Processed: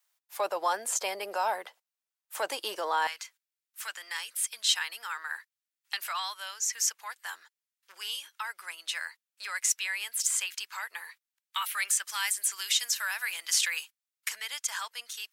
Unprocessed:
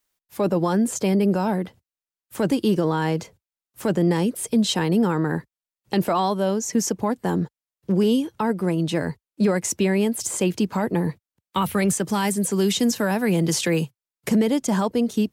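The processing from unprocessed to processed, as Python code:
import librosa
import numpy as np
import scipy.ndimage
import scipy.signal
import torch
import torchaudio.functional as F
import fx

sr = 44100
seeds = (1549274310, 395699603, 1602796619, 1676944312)

y = fx.highpass(x, sr, hz=fx.steps((0.0, 680.0), (3.07, 1400.0)), slope=24)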